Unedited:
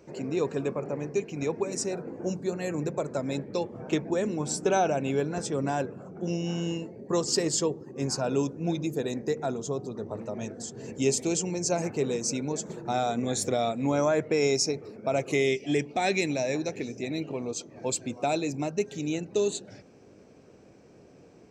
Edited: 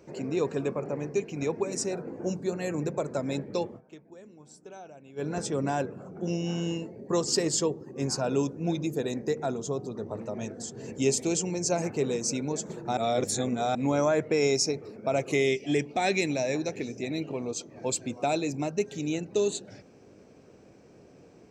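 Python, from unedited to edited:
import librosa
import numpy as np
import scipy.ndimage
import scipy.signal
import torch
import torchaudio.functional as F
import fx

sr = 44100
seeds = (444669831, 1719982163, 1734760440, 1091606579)

y = fx.edit(x, sr, fx.fade_down_up(start_s=3.67, length_s=1.63, db=-21.5, fade_s=0.14, curve='qsin'),
    fx.reverse_span(start_s=12.97, length_s=0.78), tone=tone)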